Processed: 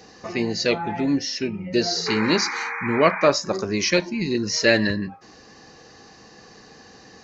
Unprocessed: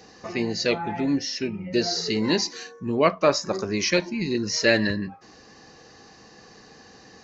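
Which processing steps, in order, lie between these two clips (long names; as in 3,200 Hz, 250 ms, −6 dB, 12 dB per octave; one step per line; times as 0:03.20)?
sound drawn into the spectrogram noise, 0:02.06–0:03.28, 780–2,500 Hz −31 dBFS
level +2 dB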